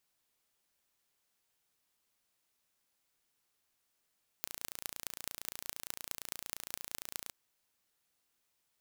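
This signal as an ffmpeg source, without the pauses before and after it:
-f lavfi -i "aevalsrc='0.355*eq(mod(n,1537),0)*(0.5+0.5*eq(mod(n,9222),0))':d=2.86:s=44100"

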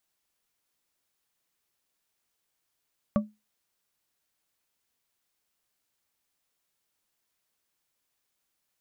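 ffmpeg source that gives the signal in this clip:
-f lavfi -i "aevalsrc='0.133*pow(10,-3*t/0.23)*sin(2*PI*212*t)+0.0794*pow(10,-3*t/0.113)*sin(2*PI*584.5*t)+0.0473*pow(10,-3*t/0.071)*sin(2*PI*1145.6*t)':d=0.89:s=44100"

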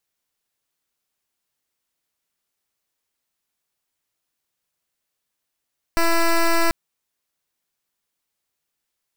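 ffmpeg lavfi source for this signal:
-f lavfi -i "aevalsrc='0.15*(2*lt(mod(334*t,1),0.1)-1)':d=0.74:s=44100"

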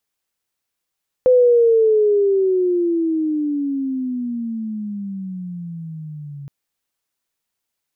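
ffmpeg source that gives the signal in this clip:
-f lavfi -i "aevalsrc='pow(10,(-8.5-22*t/5.22)/20)*sin(2*PI*511*5.22/(-22.5*log(2)/12)*(exp(-22.5*log(2)/12*t/5.22)-1))':d=5.22:s=44100"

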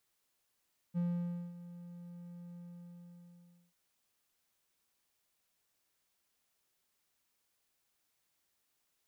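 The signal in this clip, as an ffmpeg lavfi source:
-f lavfi -i "aevalsrc='0.0398*(1-4*abs(mod(174*t+0.25,1)-0.5))':d=2.79:s=44100,afade=t=in:d=0.035,afade=t=out:st=0.035:d=0.552:silence=0.15,afade=t=out:st=1.63:d=1.16"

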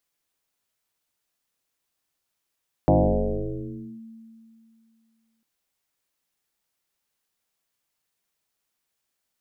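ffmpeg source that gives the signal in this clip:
-f lavfi -i "aevalsrc='0.224*pow(10,-3*t/2.61)*sin(2*PI*225*t+5.4*clip(1-t/1.13,0,1)*sin(2*PI*0.44*225*t))':d=2.55:s=44100"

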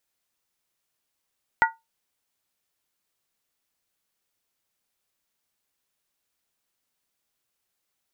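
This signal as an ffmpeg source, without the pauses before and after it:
-f lavfi -i "aevalsrc='0.2*pow(10,-3*t/0.2)*sin(2*PI*905*t)+0.178*pow(10,-3*t/0.158)*sin(2*PI*1442.6*t)+0.158*pow(10,-3*t/0.137)*sin(2*PI*1933.1*t)':d=0.63:s=44100"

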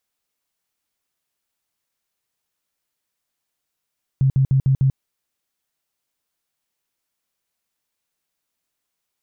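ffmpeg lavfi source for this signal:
-f lavfi -i "aevalsrc='0.237*sin(2*PI*134*mod(t,0.15))*lt(mod(t,0.15),12/134)':d=0.75:s=44100"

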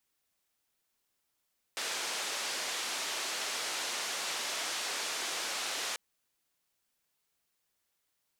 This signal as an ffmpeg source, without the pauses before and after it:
-f lavfi -i "anoisesrc=c=white:d=4.19:r=44100:seed=1,highpass=f=400,lowpass=f=6400,volume=-25.8dB"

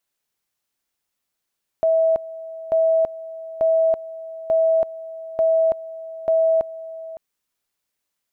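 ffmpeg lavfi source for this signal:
-f lavfi -i "aevalsrc='pow(10,(-14-17*gte(mod(t,0.89),0.33))/20)*sin(2*PI*650*t)':d=5.34:s=44100"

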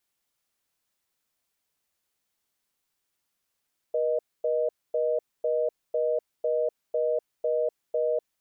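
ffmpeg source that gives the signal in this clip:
-f lavfi -i "aevalsrc='0.0531*(sin(2*PI*480*t)+sin(2*PI*620*t))*clip(min(mod(t,0.5),0.25-mod(t,0.5))/0.005,0,1)':d=4.25:s=44100"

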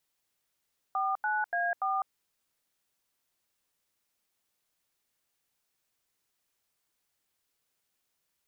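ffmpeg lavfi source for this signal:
-f lavfi -i "aevalsrc='0.0335*clip(min(mod(t,0.289),0.203-mod(t,0.289))/0.002,0,1)*(eq(floor(t/0.289),0)*(sin(2*PI*770*mod(t,0.289))+sin(2*PI*1209*mod(t,0.289)))+eq(floor(t/0.289),1)*(sin(2*PI*852*mod(t,0.289))+sin(2*PI*1477*mod(t,0.289)))+eq(floor(t/0.289),2)*(sin(2*PI*697*mod(t,0.289))+sin(2*PI*1633*mod(t,0.289)))+eq(floor(t/0.289),3)*(sin(2*PI*770*mod(t,0.289))+sin(2*PI*1209*mod(t,0.289))))':d=1.156:s=44100"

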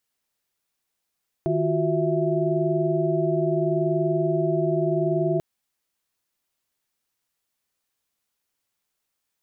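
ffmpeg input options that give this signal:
-f lavfi -i "aevalsrc='0.0531*(sin(2*PI*155.56*t)+sin(2*PI*349.23*t)+sin(2*PI*369.99*t)+sin(2*PI*659.26*t))':d=3.94:s=44100"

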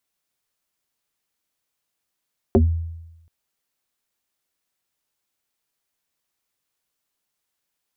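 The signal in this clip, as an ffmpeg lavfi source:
-f lavfi -i "aevalsrc='0.376*pow(10,-3*t/0.97)*sin(2*PI*82.7*t+3.7*pow(10,-3*t/0.21)*sin(2*PI*1.86*82.7*t))':d=0.73:s=44100"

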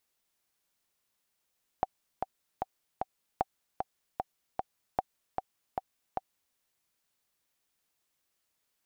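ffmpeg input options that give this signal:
-f lavfi -i "aevalsrc='pow(10,(-13.5-4.5*gte(mod(t,4*60/152),60/152))/20)*sin(2*PI*762*mod(t,60/152))*exp(-6.91*mod(t,60/152)/0.03)':d=4.73:s=44100"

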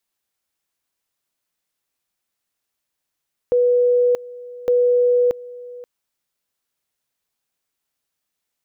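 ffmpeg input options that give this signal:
-f lavfi -i "aevalsrc='pow(10,(-12.5-20*gte(mod(t,1.16),0.63))/20)*sin(2*PI*490*t)':d=2.32:s=44100"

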